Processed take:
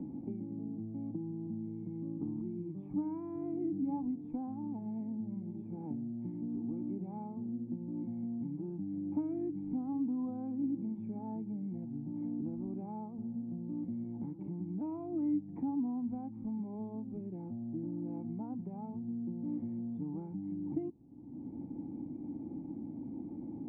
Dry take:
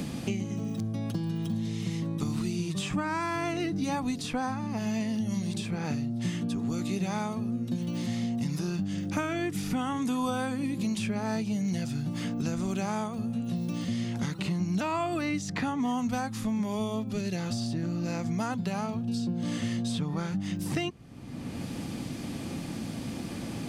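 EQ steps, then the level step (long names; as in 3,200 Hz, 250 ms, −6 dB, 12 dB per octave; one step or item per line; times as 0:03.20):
formant resonators in series u
0.0 dB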